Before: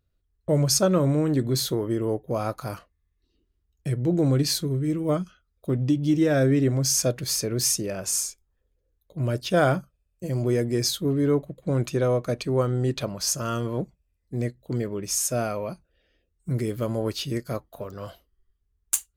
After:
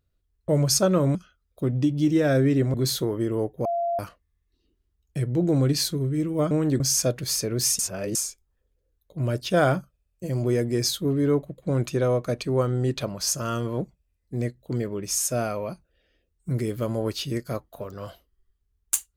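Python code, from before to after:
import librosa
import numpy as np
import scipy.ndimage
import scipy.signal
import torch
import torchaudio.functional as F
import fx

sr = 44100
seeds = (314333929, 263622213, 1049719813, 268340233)

y = fx.edit(x, sr, fx.swap(start_s=1.15, length_s=0.29, other_s=5.21, other_length_s=1.59),
    fx.bleep(start_s=2.35, length_s=0.34, hz=686.0, db=-22.5),
    fx.reverse_span(start_s=7.79, length_s=0.36), tone=tone)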